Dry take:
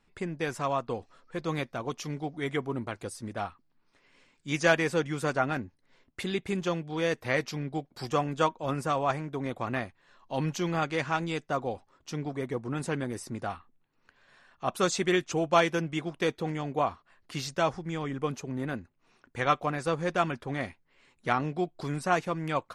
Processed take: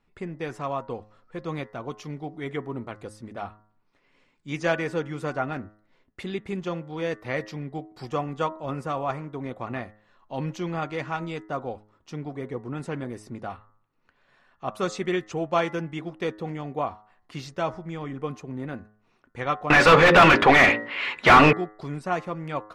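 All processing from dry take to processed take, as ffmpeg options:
-filter_complex "[0:a]asettb=1/sr,asplit=3[a][b][c];[a]atrim=end=19.704[d];[b]atrim=start=19.7:end=21.53,asetpts=PTS-STARTPTS,afade=t=in:d=0.004:c=qsin,afade=t=out:st=1.826:d=0.004:c=qsin,equalizer=f=2.8k:t=o:w=2.4:g=15,bandreject=f=57.77:t=h:w=4,bandreject=f=115.54:t=h:w=4,bandreject=f=173.31:t=h:w=4,bandreject=f=231.08:t=h:w=4,bandreject=f=288.85:t=h:w=4,bandreject=f=346.62:t=h:w=4,bandreject=f=404.39:t=h:w=4,bandreject=f=462.16:t=h:w=4,bandreject=f=519.93:t=h:w=4,bandreject=f=577.7:t=h:w=4,asplit=2[e][f];[f]highpass=f=720:p=1,volume=36dB,asoftclip=type=tanh:threshold=-1.5dB[g];[e][g]amix=inputs=2:normalize=0,lowpass=f=1.6k:p=1,volume=-6dB[h];[c]atrim=start=21.526[i];[d][h]acrossfade=d=0.004:c1=hsin:c2=qsin[j];[j][i]acrossfade=d=0.004:c1=qsin:c2=hsin,highshelf=f=4.4k:g=-11.5,bandreject=f=1.6k:w=18,bandreject=f=105.9:t=h:w=4,bandreject=f=211.8:t=h:w=4,bandreject=f=317.7:t=h:w=4,bandreject=f=423.6:t=h:w=4,bandreject=f=529.5:t=h:w=4,bandreject=f=635.4:t=h:w=4,bandreject=f=741.3:t=h:w=4,bandreject=f=847.2:t=h:w=4,bandreject=f=953.1:t=h:w=4,bandreject=f=1.059k:t=h:w=4,bandreject=f=1.1649k:t=h:w=4,bandreject=f=1.2708k:t=h:w=4,bandreject=f=1.3767k:t=h:w=4,bandreject=f=1.4826k:t=h:w=4,bandreject=f=1.5885k:t=h:w=4,bandreject=f=1.6944k:t=h:w=4,bandreject=f=1.8003k:t=h:w=4,bandreject=f=1.9062k:t=h:w=4,bandreject=f=2.0121k:t=h:w=4"

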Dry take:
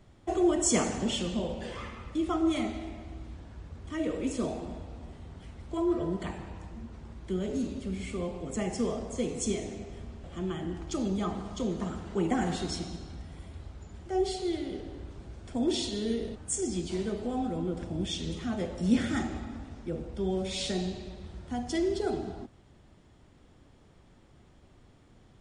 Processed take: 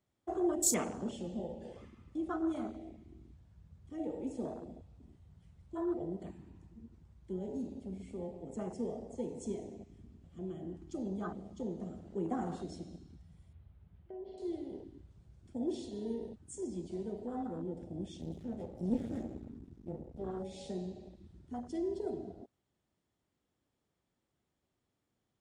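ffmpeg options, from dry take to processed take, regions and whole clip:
-filter_complex "[0:a]asettb=1/sr,asplit=3[a][b][c];[a]atrim=end=13.534[d];[b]atrim=start=13.53:end=14.38,asetpts=PTS-STARTPTS,afade=t=in:d=0.004:c=qsin,afade=t=out:st=0.846:d=0.004:c=qsin,lowpass=f=3.3k:w=0.5412,lowpass=f=3.3k:w=1.3066,acompressor=threshold=-36dB:ratio=4:attack=3.2:release=140:knee=1:detection=peak[e];[c]atrim=start=14.376[f];[d][e]acrossfade=d=0.004:c1=hsin:c2=qsin[g];[g][f]acrossfade=d=0.004:c1=qsin:c2=hsin,asettb=1/sr,asplit=3[h][i][j];[h]atrim=end=18.214[k];[i]atrim=start=18.21:end=20.4,asetpts=PTS-STARTPTS,afade=t=in:d=0.004:c=qsin,afade=t=out:st=2.186:d=0.004:c=qsin,aeval=exprs='max(val(0),0)':c=same,lowshelf=f=360:g=8[l];[j]atrim=start=20.396[m];[k][l]acrossfade=d=0.004:c1=hsin:c2=qsin[n];[n][m]acrossfade=d=0.004:c1=qsin:c2=hsin,afwtdn=0.02,highpass=f=140:p=1,highshelf=f=5.6k:g=8.5,volume=-6.5dB"

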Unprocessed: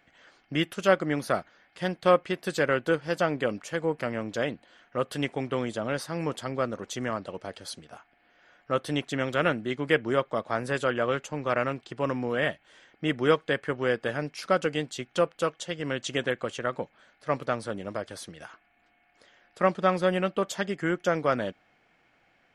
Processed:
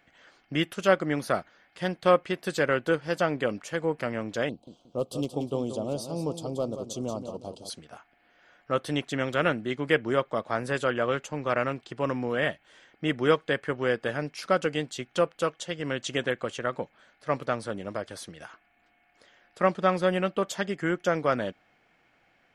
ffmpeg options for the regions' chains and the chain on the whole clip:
-filter_complex "[0:a]asettb=1/sr,asplit=3[a][b][c];[a]atrim=end=4.494[d];[b]atrim=start=4.49:end=7.7,asetpts=PTS-STARTPTS,afade=t=in:d=0.004:c=qsin,afade=t=out:st=3.206:d=0.004:c=qsin,volume=17dB,asoftclip=hard,volume=-17dB,asuperstop=centerf=1800:order=4:qfactor=0.62,aecho=1:1:179|358|537:0.335|0.104|0.0322,atrim=end_sample=141561[e];[c]atrim=start=7.696[f];[d][e]acrossfade=d=0.004:c1=hsin:c2=qsin[g];[g][f]acrossfade=d=0.004:c1=qsin:c2=hsin"

